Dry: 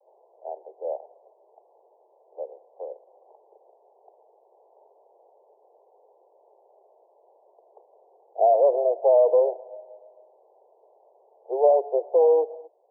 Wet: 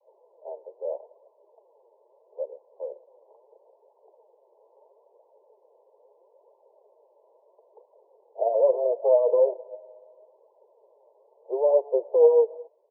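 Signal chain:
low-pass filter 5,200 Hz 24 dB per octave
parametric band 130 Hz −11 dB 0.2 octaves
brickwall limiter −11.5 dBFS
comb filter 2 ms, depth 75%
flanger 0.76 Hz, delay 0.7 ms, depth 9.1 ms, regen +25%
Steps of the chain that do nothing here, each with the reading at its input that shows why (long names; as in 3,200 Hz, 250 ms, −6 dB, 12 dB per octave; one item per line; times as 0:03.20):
low-pass filter 5,200 Hz: nothing at its input above 1,000 Hz
parametric band 130 Hz: nothing at its input below 340 Hz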